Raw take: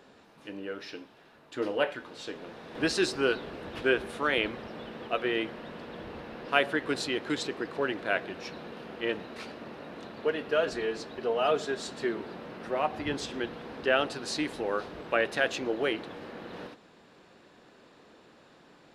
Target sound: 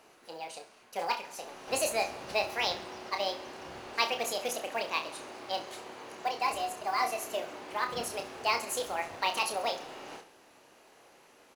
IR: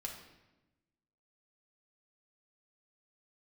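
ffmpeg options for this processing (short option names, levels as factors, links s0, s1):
-filter_complex "[0:a]equalizer=f=6500:w=6.8:g=14,asetrate=72324,aresample=44100,asplit=2[s0][s1];[s1]aecho=0:1:67|134|201|268|335:0.168|0.0907|0.049|0.0264|0.0143[s2];[s0][s2]amix=inputs=2:normalize=0,acrusher=bits=7:mode=log:mix=0:aa=0.000001,asplit=2[s3][s4];[s4]adelay=30,volume=0.447[s5];[s3][s5]amix=inputs=2:normalize=0,volume=0.668"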